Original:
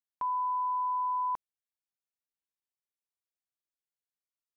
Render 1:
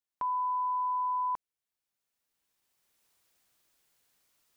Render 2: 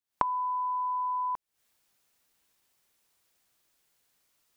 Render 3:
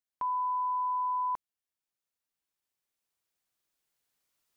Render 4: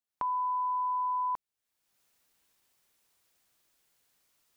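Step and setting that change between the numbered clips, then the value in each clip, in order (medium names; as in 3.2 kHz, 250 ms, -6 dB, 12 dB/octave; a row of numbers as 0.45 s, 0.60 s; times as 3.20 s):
recorder AGC, rising by: 13 dB/s, 86 dB/s, 5 dB/s, 34 dB/s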